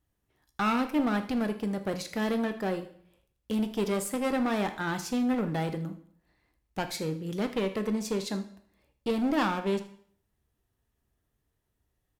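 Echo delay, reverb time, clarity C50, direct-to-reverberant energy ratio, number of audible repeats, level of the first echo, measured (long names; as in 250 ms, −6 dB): 79 ms, 0.60 s, 11.5 dB, 7.5 dB, 1, −17.0 dB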